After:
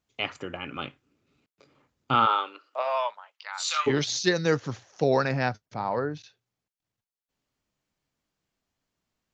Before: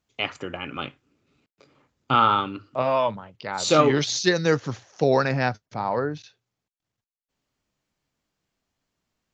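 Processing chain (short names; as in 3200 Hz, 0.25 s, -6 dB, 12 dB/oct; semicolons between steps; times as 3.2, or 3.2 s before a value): 2.25–3.86 HPF 370 Hz -> 1300 Hz 24 dB/oct; gain -3 dB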